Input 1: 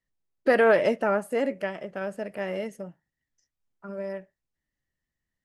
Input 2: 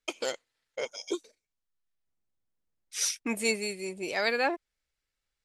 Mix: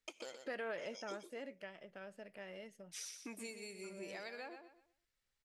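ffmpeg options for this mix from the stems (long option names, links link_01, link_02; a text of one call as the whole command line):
ffmpeg -i stem1.wav -i stem2.wav -filter_complex "[0:a]equalizer=frequency=3600:width_type=o:width=2:gain=9,volume=-14dB[link_01];[1:a]acompressor=threshold=-35dB:ratio=6,volume=-3dB,asplit=2[link_02][link_03];[link_03]volume=-9.5dB,aecho=0:1:123|246|369|492:1|0.23|0.0529|0.0122[link_04];[link_01][link_02][link_04]amix=inputs=3:normalize=0,acompressor=threshold=-58dB:ratio=1.5" out.wav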